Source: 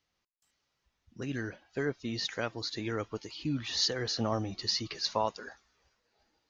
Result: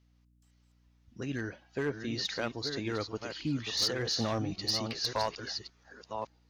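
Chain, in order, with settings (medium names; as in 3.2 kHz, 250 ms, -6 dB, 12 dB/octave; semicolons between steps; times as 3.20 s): chunks repeated in reverse 570 ms, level -7.5 dB; hum 60 Hz, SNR 31 dB; one-sided clip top -24.5 dBFS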